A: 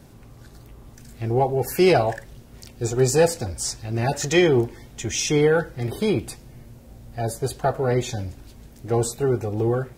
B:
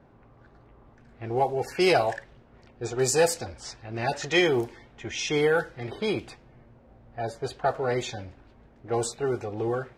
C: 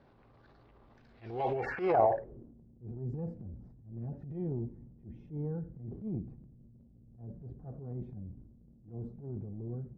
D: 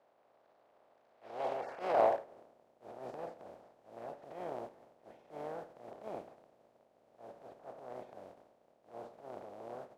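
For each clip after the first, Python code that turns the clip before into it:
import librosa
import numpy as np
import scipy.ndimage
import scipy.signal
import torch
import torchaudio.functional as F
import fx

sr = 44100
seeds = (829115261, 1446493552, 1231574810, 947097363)

y1 = fx.env_lowpass(x, sr, base_hz=1300.0, full_db=-14.0)
y1 = fx.low_shelf(y1, sr, hz=360.0, db=-12.0)
y2 = fx.filter_sweep_lowpass(y1, sr, from_hz=4400.0, to_hz=190.0, start_s=1.29, end_s=2.65, q=2.4)
y2 = fx.transient(y2, sr, attack_db=-11, sustain_db=8)
y2 = F.gain(torch.from_numpy(y2), -6.5).numpy()
y3 = fx.spec_flatten(y2, sr, power=0.3)
y3 = fx.bandpass_q(y3, sr, hz=630.0, q=2.9)
y3 = F.gain(torch.from_numpy(y3), 3.0).numpy()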